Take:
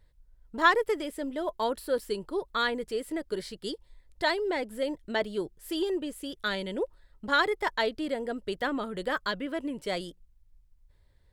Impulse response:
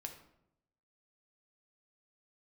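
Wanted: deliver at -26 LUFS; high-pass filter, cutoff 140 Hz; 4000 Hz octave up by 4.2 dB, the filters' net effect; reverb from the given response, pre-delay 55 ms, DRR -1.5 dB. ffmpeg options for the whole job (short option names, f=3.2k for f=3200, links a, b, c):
-filter_complex "[0:a]highpass=140,equalizer=f=4k:t=o:g=5,asplit=2[a][b];[1:a]atrim=start_sample=2205,adelay=55[c];[b][c]afir=irnorm=-1:irlink=0,volume=5dB[d];[a][d]amix=inputs=2:normalize=0"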